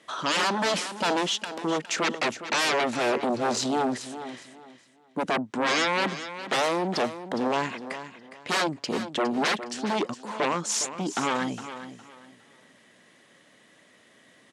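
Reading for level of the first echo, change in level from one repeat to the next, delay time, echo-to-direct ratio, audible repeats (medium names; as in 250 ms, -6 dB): -12.0 dB, -11.5 dB, 411 ms, -11.5 dB, 2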